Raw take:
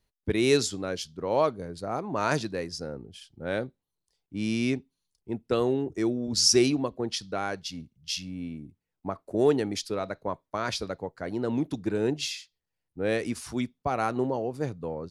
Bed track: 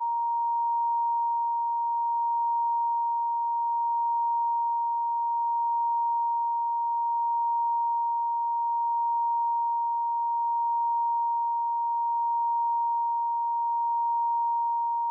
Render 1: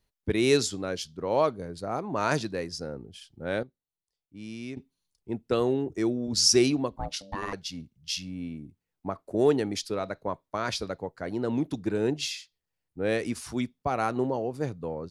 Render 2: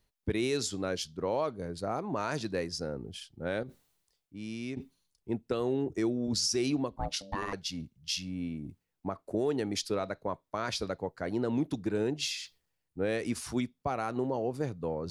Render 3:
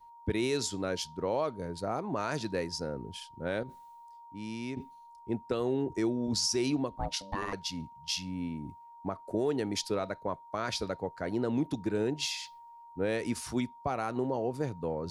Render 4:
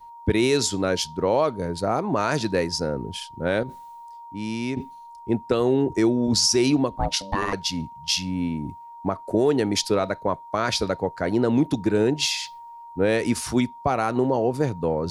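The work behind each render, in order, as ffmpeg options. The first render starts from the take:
ffmpeg -i in.wav -filter_complex "[0:a]asettb=1/sr,asplit=3[link_01][link_02][link_03];[link_01]atrim=end=6.964[link_04];[link_02]atrim=start=6.96:end=7.53,asetpts=PTS-STARTPTS,afade=type=in:duration=0.004:curve=qsin,afade=type=out:start_time=0.566:duration=0.004:curve=qsin,aeval=exprs='val(0)*sin(2*PI*390*n/s)':channel_layout=same[link_05];[link_03]atrim=start=7.526[link_06];[link_04][link_05]acrossfade=duration=0.004:curve1=hsin:curve2=qsin[link_07];[link_07][link_06]acrossfade=duration=0.004:curve1=qsin:curve2=hsin,asplit=3[link_08][link_09][link_10];[link_08]atrim=end=3.632[link_11];[link_09]atrim=start=3.628:end=4.772,asetpts=PTS-STARTPTS,volume=-11.5dB[link_12];[link_10]atrim=start=4.768[link_13];[link_11][link_12]acrossfade=duration=0.004:curve1=hsin:curve2=hsin[link_14];[link_14][link_13]acrossfade=duration=0.004:curve1=hsin:curve2=hsin" out.wav
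ffmpeg -i in.wav -af "areverse,acompressor=mode=upward:threshold=-36dB:ratio=2.5,areverse,alimiter=limit=-20.5dB:level=0:latency=1:release=209" out.wav
ffmpeg -i in.wav -i bed.wav -filter_complex "[1:a]volume=-26dB[link_01];[0:a][link_01]amix=inputs=2:normalize=0" out.wav
ffmpeg -i in.wav -af "volume=10dB" out.wav

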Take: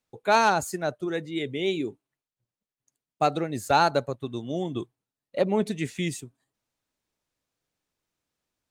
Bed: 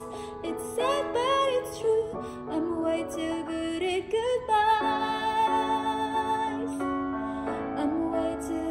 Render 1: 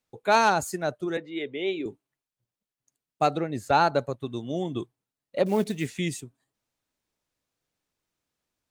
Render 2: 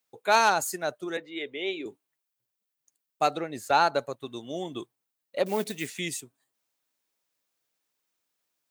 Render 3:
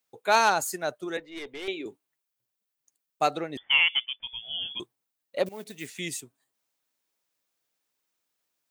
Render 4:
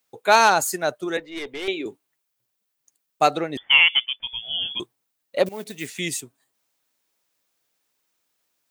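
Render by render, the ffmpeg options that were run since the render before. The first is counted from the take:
ffmpeg -i in.wav -filter_complex "[0:a]asettb=1/sr,asplit=3[link_01][link_02][link_03];[link_01]atrim=end=1.174[link_04];[link_02]atrim=start=1.17:end=1.86,asetpts=PTS-STARTPTS,afade=type=in:duration=0.004:curve=qsin,afade=type=out:start_time=0.686:duration=0.004:curve=qsin,acrossover=split=270 3900:gain=0.178 1 0.0891[link_05][link_06][link_07];[link_05][link_06][link_07]amix=inputs=3:normalize=0[link_08];[link_03]atrim=start=1.856[link_09];[link_04][link_08]acrossfade=duration=0.004:curve1=hsin:curve2=qsin[link_10];[link_10][link_09]acrossfade=duration=0.004:curve1=qsin:curve2=hsin,asettb=1/sr,asplit=3[link_11][link_12][link_13];[link_11]atrim=end=3.354[link_14];[link_12]atrim=start=3.35:end=3.99,asetpts=PTS-STARTPTS,afade=type=in:duration=0.004:curve=qsin,afade=type=out:start_time=0.636:duration=0.004:curve=qsin,highshelf=frequency=5400:gain=-10.5[link_15];[link_13]atrim=start=3.986[link_16];[link_14][link_15]acrossfade=duration=0.004:curve1=hsin:curve2=qsin[link_17];[link_17][link_16]acrossfade=duration=0.004:curve1=qsin:curve2=hsin,asettb=1/sr,asplit=3[link_18][link_19][link_20];[link_18]atrim=end=5.464[link_21];[link_19]atrim=start=5.46:end=5.99,asetpts=PTS-STARTPTS,afade=type=in:duration=0.004:curve=qsin,afade=type=out:start_time=0.526:duration=0.004:curve=qsin,acrusher=bits=6:mode=log:mix=0:aa=0.000001[link_22];[link_20]atrim=start=5.986[link_23];[link_21][link_22]acrossfade=duration=0.004:curve1=hsin:curve2=qsin[link_24];[link_24][link_23]acrossfade=duration=0.004:curve1=qsin:curve2=hsin" out.wav
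ffmpeg -i in.wav -af "lowpass=frequency=2700:poles=1,aemphasis=mode=production:type=riaa" out.wav
ffmpeg -i in.wav -filter_complex "[0:a]asettb=1/sr,asplit=3[link_01][link_02][link_03];[link_01]atrim=end=1.194[link_04];[link_02]atrim=start=1.19:end=1.68,asetpts=PTS-STARTPTS,afade=type=in:duration=0.004:curve=qsin,afade=type=out:start_time=0.486:duration=0.004:curve=qsin,aeval=exprs='(tanh(44.7*val(0)+0.4)-tanh(0.4))/44.7':channel_layout=same[link_05];[link_03]atrim=start=1.676[link_06];[link_04][link_05]acrossfade=duration=0.004:curve1=hsin:curve2=qsin[link_07];[link_07][link_06]acrossfade=duration=0.004:curve1=qsin:curve2=hsin,asettb=1/sr,asplit=3[link_08][link_09][link_10];[link_08]atrim=end=3.574[link_11];[link_09]atrim=start=3.57:end=4.8,asetpts=PTS-STARTPTS,afade=type=in:duration=0.004:curve=qsin,afade=type=out:start_time=1.226:duration=0.004:curve=qsin,lowpass=frequency=3100:width_type=q:width=0.5098,lowpass=frequency=3100:width_type=q:width=0.6013,lowpass=frequency=3100:width_type=q:width=0.9,lowpass=frequency=3100:width_type=q:width=2.563,afreqshift=-3600[link_12];[link_10]atrim=start=4.796[link_13];[link_11][link_12]acrossfade=duration=0.004:curve1=hsin:curve2=qsin[link_14];[link_14][link_13]acrossfade=duration=0.004:curve1=qsin:curve2=hsin,asplit=2[link_15][link_16];[link_15]atrim=end=5.49,asetpts=PTS-STARTPTS,afade=type=out:start_time=5.486:duration=0.004:curve=hsin:silence=0.125893[link_17];[link_16]atrim=start=5.49,asetpts=PTS-STARTPTS,afade=type=in:duration=0.68:silence=0.125893[link_18];[link_17][link_18]concat=n=2:v=0:a=1" out.wav
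ffmpeg -i in.wav -af "volume=6.5dB,alimiter=limit=-3dB:level=0:latency=1" out.wav

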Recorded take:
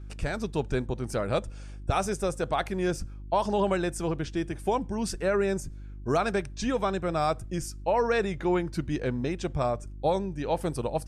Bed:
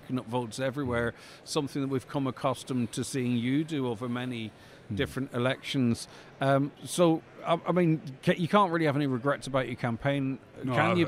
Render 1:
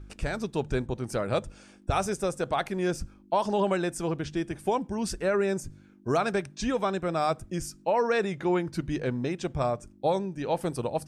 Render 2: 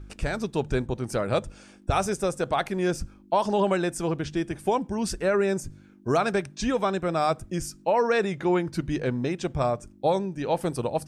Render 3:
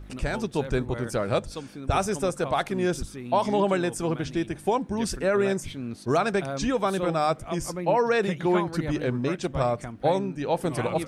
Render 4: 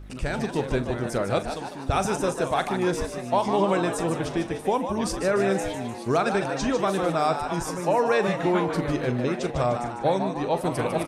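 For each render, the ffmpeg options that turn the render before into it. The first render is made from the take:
ffmpeg -i in.wav -af "bandreject=frequency=50:width_type=h:width=4,bandreject=frequency=100:width_type=h:width=4,bandreject=frequency=150:width_type=h:width=4" out.wav
ffmpeg -i in.wav -af "volume=2.5dB" out.wav
ffmpeg -i in.wav -i bed.wav -filter_complex "[1:a]volume=-8dB[link_01];[0:a][link_01]amix=inputs=2:normalize=0" out.wav
ffmpeg -i in.wav -filter_complex "[0:a]asplit=2[link_01][link_02];[link_02]adelay=41,volume=-13dB[link_03];[link_01][link_03]amix=inputs=2:normalize=0,asplit=2[link_04][link_05];[link_05]asplit=6[link_06][link_07][link_08][link_09][link_10][link_11];[link_06]adelay=150,afreqshift=110,volume=-8dB[link_12];[link_07]adelay=300,afreqshift=220,volume=-13.4dB[link_13];[link_08]adelay=450,afreqshift=330,volume=-18.7dB[link_14];[link_09]adelay=600,afreqshift=440,volume=-24.1dB[link_15];[link_10]adelay=750,afreqshift=550,volume=-29.4dB[link_16];[link_11]adelay=900,afreqshift=660,volume=-34.8dB[link_17];[link_12][link_13][link_14][link_15][link_16][link_17]amix=inputs=6:normalize=0[link_18];[link_04][link_18]amix=inputs=2:normalize=0" out.wav

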